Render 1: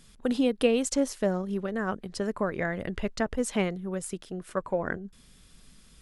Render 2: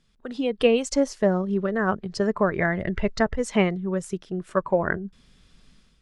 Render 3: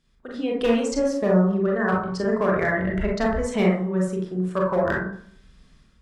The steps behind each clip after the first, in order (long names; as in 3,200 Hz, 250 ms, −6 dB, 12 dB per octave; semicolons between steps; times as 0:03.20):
noise reduction from a noise print of the clip's start 7 dB; low-pass filter 5,400 Hz 12 dB per octave; automatic gain control gain up to 10.5 dB; level −3 dB
asymmetric clip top −15.5 dBFS, bottom −10.5 dBFS; tuned comb filter 62 Hz, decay 0.74 s, harmonics all, mix 40%; convolution reverb RT60 0.55 s, pre-delay 27 ms, DRR −3 dB